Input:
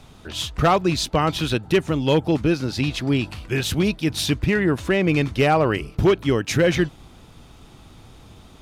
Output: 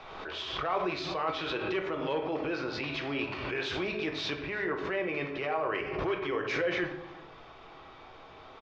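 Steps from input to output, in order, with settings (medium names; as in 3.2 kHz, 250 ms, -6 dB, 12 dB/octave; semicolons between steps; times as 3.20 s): inverse Chebyshev low-pass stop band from 9.5 kHz, stop band 40 dB; three-band isolator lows -20 dB, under 470 Hz, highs -12 dB, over 2.5 kHz; de-hum 64.84 Hz, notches 3; reverse; compression 4:1, threshold -37 dBFS, peak gain reduction 18.5 dB; reverse; small resonant body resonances 390/1100/2300 Hz, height 6 dB; on a send: delay 364 ms -21.5 dB; on the sum: simulated room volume 150 m³, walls mixed, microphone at 0.66 m; swell ahead of each attack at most 38 dB/s; trim +2 dB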